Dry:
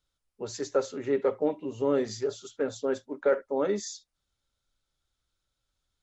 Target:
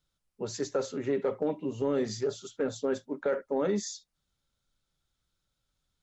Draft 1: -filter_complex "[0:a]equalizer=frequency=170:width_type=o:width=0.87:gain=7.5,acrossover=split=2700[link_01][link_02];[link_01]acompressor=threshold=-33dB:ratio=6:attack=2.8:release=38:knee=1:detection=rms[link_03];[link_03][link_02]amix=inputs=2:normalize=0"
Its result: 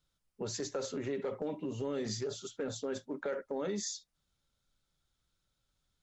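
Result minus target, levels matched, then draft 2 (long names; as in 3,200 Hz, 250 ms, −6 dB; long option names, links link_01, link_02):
downward compressor: peak gain reduction +8 dB
-filter_complex "[0:a]equalizer=frequency=170:width_type=o:width=0.87:gain=7.5,acrossover=split=2700[link_01][link_02];[link_01]acompressor=threshold=-23.5dB:ratio=6:attack=2.8:release=38:knee=1:detection=rms[link_03];[link_03][link_02]amix=inputs=2:normalize=0"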